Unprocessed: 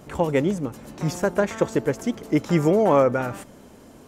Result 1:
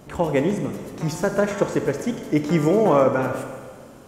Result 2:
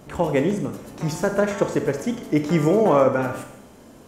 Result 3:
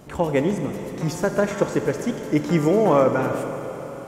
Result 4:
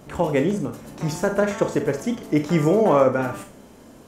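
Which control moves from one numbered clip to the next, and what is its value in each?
Schroeder reverb, RT60: 1.7, 0.75, 4.1, 0.31 s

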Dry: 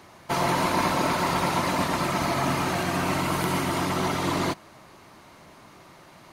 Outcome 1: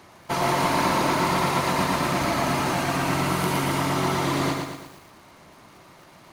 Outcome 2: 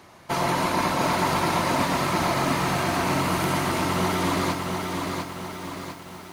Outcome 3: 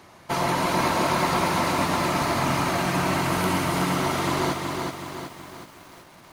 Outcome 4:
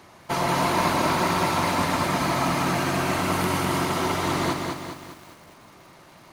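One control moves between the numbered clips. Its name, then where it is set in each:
lo-fi delay, time: 0.115, 0.7, 0.374, 0.203 s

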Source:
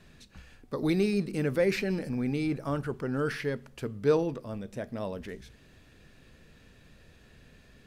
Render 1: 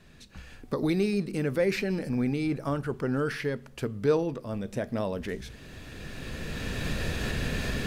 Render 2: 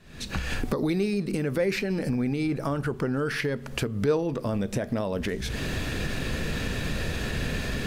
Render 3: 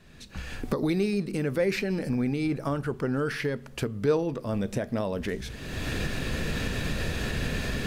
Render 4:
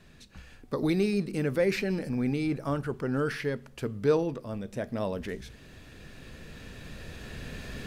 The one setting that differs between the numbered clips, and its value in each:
recorder AGC, rising by: 12, 78, 32, 5 dB/s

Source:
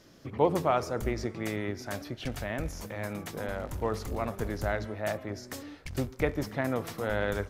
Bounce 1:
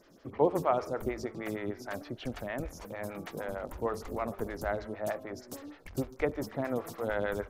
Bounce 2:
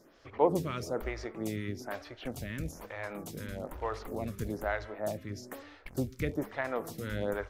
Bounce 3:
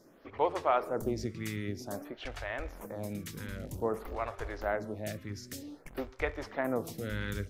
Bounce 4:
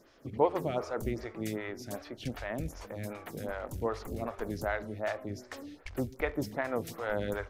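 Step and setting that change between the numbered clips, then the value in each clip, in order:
photocell phaser, rate: 6.5, 1.1, 0.52, 2.6 Hz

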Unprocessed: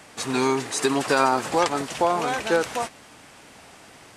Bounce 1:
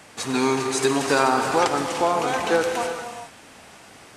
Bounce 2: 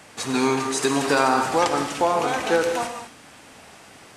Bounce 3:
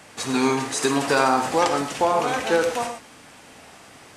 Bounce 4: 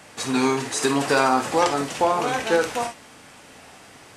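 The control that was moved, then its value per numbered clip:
non-linear reverb, gate: 450, 250, 150, 90 ms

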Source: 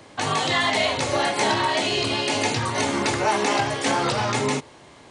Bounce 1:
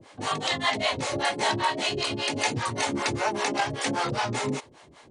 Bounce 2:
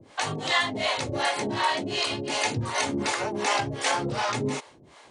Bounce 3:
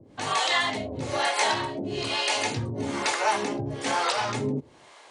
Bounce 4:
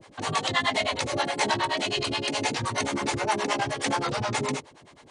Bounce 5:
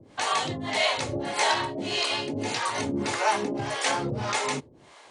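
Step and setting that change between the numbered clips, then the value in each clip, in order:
harmonic tremolo, rate: 5.1, 2.7, 1.1, 9.5, 1.7 Hz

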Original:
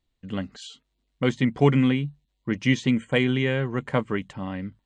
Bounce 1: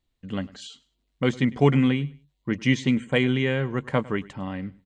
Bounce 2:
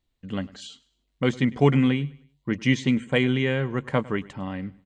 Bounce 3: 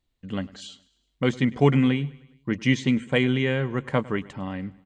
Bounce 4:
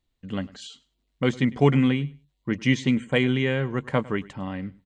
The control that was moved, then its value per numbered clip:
feedback echo, feedback: 24, 36, 55, 16%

